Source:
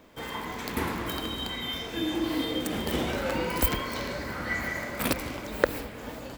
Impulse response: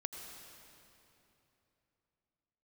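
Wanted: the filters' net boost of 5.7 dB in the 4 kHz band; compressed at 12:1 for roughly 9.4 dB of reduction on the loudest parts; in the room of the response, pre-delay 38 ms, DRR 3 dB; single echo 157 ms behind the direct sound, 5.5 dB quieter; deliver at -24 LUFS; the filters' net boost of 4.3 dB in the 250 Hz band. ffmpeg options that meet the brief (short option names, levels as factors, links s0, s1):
-filter_complex "[0:a]equalizer=f=250:t=o:g=5.5,equalizer=f=4000:t=o:g=7.5,acompressor=threshold=0.0501:ratio=12,aecho=1:1:157:0.531,asplit=2[s0][s1];[1:a]atrim=start_sample=2205,adelay=38[s2];[s1][s2]afir=irnorm=-1:irlink=0,volume=0.794[s3];[s0][s3]amix=inputs=2:normalize=0,volume=1.58"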